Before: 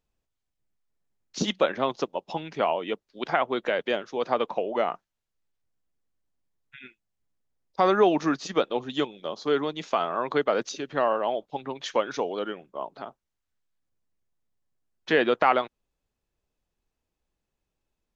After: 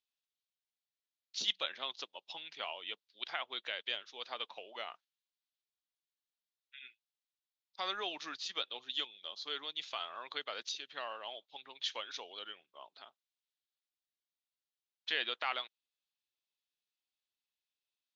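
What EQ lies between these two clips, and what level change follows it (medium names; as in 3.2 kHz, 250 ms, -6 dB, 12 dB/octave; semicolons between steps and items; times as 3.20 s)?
band-pass filter 3.7 kHz, Q 2.3; +1.0 dB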